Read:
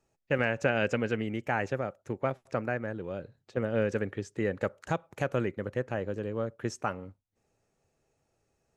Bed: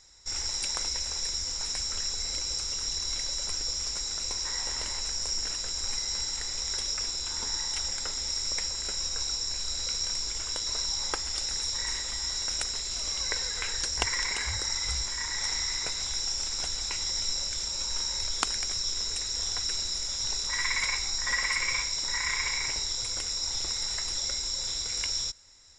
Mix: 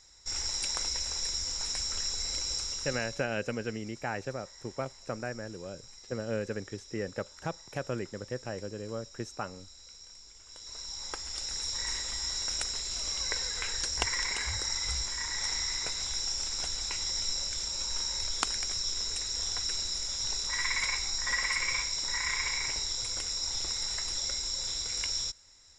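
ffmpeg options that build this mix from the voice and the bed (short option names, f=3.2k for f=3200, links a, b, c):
-filter_complex "[0:a]adelay=2550,volume=-5dB[a];[1:a]volume=16.5dB,afade=t=out:st=2.56:d=0.71:silence=0.11885,afade=t=in:st=10.44:d=1.48:silence=0.125893[b];[a][b]amix=inputs=2:normalize=0"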